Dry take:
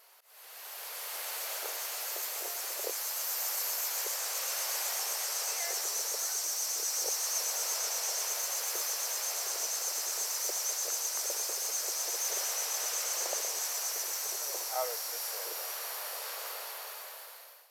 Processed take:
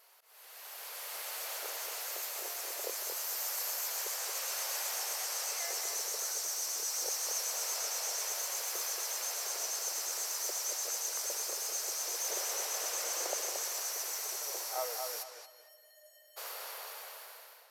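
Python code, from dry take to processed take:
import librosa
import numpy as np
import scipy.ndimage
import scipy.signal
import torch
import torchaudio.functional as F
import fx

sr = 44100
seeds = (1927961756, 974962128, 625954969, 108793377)

y = fx.low_shelf(x, sr, hz=380.0, db=10.5, at=(12.23, 13.34))
y = fx.comb_fb(y, sr, f0_hz=610.0, decay_s=0.26, harmonics='odd', damping=0.0, mix_pct=100, at=(15.22, 16.36), fade=0.02)
y = fx.echo_filtered(y, sr, ms=227, feedback_pct=29, hz=4000.0, wet_db=-5.0)
y = F.gain(torch.from_numpy(y), -3.0).numpy()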